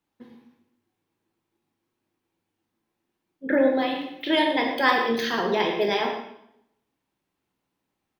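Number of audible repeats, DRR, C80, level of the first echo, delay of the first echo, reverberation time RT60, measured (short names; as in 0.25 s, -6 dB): 1, 1.5 dB, 6.5 dB, -11.0 dB, 0.117 s, 0.80 s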